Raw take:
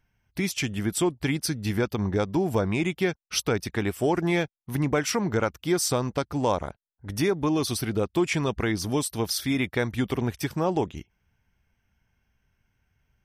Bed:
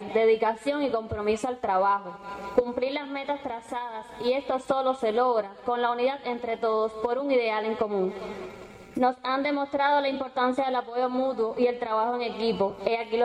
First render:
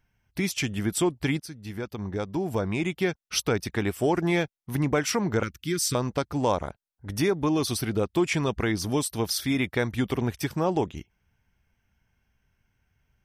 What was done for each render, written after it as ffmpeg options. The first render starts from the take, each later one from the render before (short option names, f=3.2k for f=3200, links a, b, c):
-filter_complex "[0:a]asettb=1/sr,asplit=3[a][b][c];[a]atrim=end=5.434[d];[b]atrim=start=5.43:end=5.95,asetpts=PTS-STARTPTS,afade=t=in:d=0.004:c=qsin,afade=t=out:st=0.516:d=0.004:c=qsin,asuperstop=centerf=710:order=4:qfactor=0.54[e];[c]atrim=start=5.946[f];[d][e]acrossfade=d=0.004:c1=hsin:c2=qsin[g];[g][f]acrossfade=d=0.004:c1=qsin:c2=hsin,asplit=2[h][i];[h]atrim=end=1.4,asetpts=PTS-STARTPTS,afade=t=out:st=1.396:d=0.004:c=hsin:silence=0.199526[j];[i]atrim=start=1.4,asetpts=PTS-STARTPTS,afade=t=in:d=1.84:silence=0.199526[k];[j][k]concat=n=2:v=0:a=1"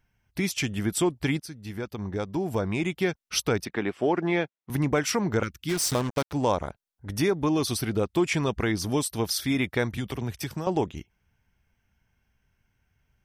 -filter_complex "[0:a]asettb=1/sr,asplit=3[a][b][c];[a]atrim=end=3.654[d];[b]atrim=start=3.65:end=4.7,asetpts=PTS-STARTPTS,afade=t=in:d=0.004:c=qsin,afade=t=out:st=1.046:d=0.004:c=qsin,highpass=190,lowpass=3.2k[e];[c]atrim=start=4.696[f];[d][e]acrossfade=d=0.004:c1=hsin:c2=qsin[g];[g][f]acrossfade=d=0.004:c1=qsin:c2=hsin,asplit=3[h][i][j];[h]afade=t=out:st=5.68:d=0.02[k];[i]acrusher=bits=4:mix=0:aa=0.5,afade=t=in:st=5.68:d=0.02,afade=t=out:st=6.32:d=0.02[l];[j]afade=t=in:st=6.32:d=0.02[m];[k][l][m]amix=inputs=3:normalize=0,asettb=1/sr,asplit=3[n][o][p];[n]atrim=end=9.974[q];[o]atrim=start=9.97:end=10.67,asetpts=PTS-STARTPTS,afade=t=in:d=0.004:c=qsin,afade=t=out:st=0.696:d=0.004:c=qsin,acrossover=split=130|3000[r][s][t];[s]acompressor=threshold=-30dB:ratio=6:attack=3.2:release=140:knee=2.83:detection=peak[u];[r][u][t]amix=inputs=3:normalize=0[v];[p]atrim=start=10.666[w];[q][v]acrossfade=d=0.004:c1=hsin:c2=qsin[x];[x][w]acrossfade=d=0.004:c1=qsin:c2=hsin"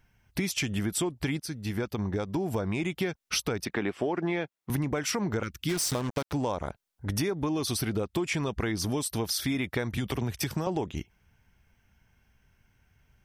-filter_complex "[0:a]asplit=2[a][b];[b]alimiter=limit=-22dB:level=0:latency=1:release=47,volume=-1dB[c];[a][c]amix=inputs=2:normalize=0,acompressor=threshold=-26dB:ratio=6"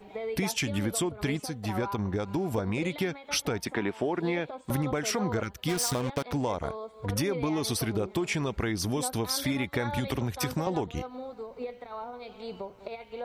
-filter_complex "[1:a]volume=-13.5dB[a];[0:a][a]amix=inputs=2:normalize=0"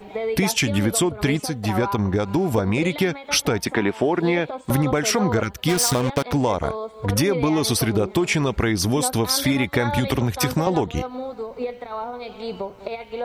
-af "volume=9dB"